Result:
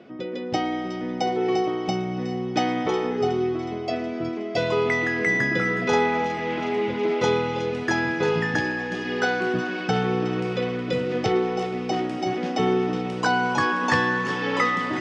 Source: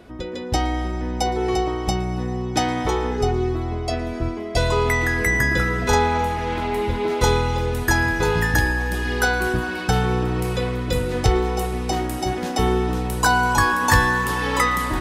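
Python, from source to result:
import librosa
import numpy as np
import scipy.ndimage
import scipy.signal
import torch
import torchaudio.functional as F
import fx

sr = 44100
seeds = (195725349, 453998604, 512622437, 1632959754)

p1 = fx.cabinet(x, sr, low_hz=150.0, low_slope=24, high_hz=4800.0, hz=(950.0, 1600.0, 4000.0), db=(-8, -5, -8))
y = p1 + fx.echo_wet_highpass(p1, sr, ms=367, feedback_pct=63, hz=2100.0, wet_db=-11.5, dry=0)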